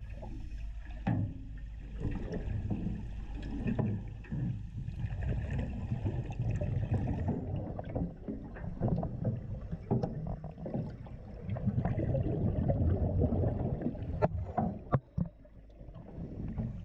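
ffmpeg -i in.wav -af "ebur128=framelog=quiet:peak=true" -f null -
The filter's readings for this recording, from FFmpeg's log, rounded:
Integrated loudness:
  I:         -36.2 LUFS
  Threshold: -46.5 LUFS
Loudness range:
  LRA:         5.1 LU
  Threshold: -56.1 LUFS
  LRA low:   -38.2 LUFS
  LRA high:  -33.1 LUFS
True peak:
  Peak:      -13.5 dBFS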